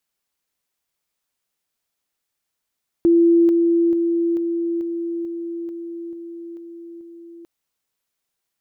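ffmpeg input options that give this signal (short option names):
-f lavfi -i "aevalsrc='pow(10,(-10.5-3*floor(t/0.44))/20)*sin(2*PI*338*t)':d=4.4:s=44100"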